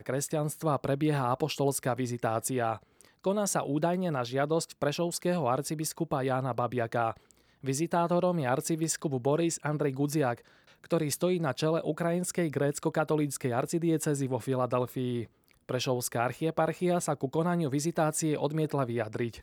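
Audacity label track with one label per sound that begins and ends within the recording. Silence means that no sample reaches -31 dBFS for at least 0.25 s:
3.260000	7.110000	sound
7.650000	10.340000	sound
10.920000	15.230000	sound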